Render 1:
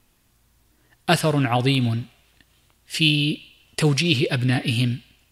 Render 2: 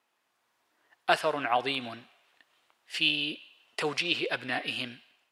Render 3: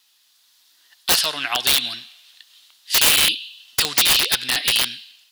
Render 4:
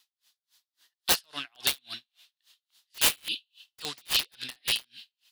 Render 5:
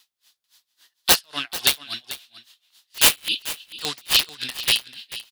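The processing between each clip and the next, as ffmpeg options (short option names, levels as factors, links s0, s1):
-af "lowpass=f=1400:p=1,dynaudnorm=f=160:g=5:m=1.58,highpass=710,volume=0.75"
-af "aexciter=amount=8.1:drive=7.2:freq=3300,equalizer=f=500:t=o:w=1:g=-7,equalizer=f=2000:t=o:w=1:g=9,equalizer=f=4000:t=o:w=1:g=6,equalizer=f=8000:t=o:w=1:g=-4,aeval=exprs='(mod(2.51*val(0)+1,2)-1)/2.51':c=same"
-af "aeval=exprs='val(0)*pow(10,-40*(0.5-0.5*cos(2*PI*3.6*n/s))/20)':c=same,volume=0.562"
-af "aecho=1:1:440:0.178,volume=2.51"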